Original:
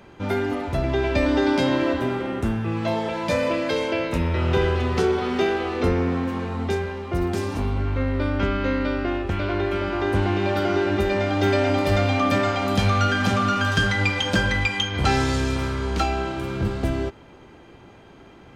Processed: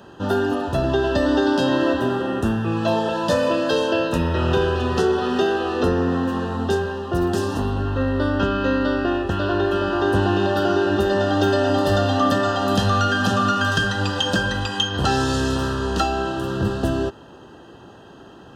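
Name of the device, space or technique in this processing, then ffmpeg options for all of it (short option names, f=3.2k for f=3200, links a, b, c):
PA system with an anti-feedback notch: -af "highpass=f=110:p=1,asuperstop=centerf=2200:order=20:qfactor=3.8,alimiter=limit=-13dB:level=0:latency=1:release=476,volume=4.5dB"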